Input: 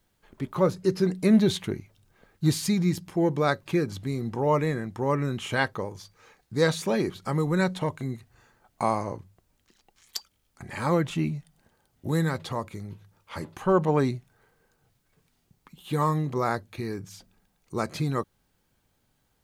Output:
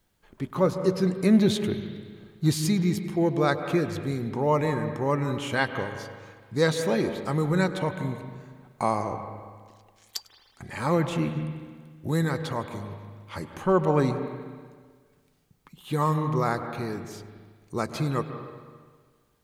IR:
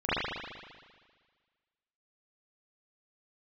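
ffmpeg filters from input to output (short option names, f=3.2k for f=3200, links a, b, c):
-filter_complex "[0:a]asplit=2[a][b];[1:a]atrim=start_sample=2205,adelay=100[c];[b][c]afir=irnorm=-1:irlink=0,volume=-22dB[d];[a][d]amix=inputs=2:normalize=0"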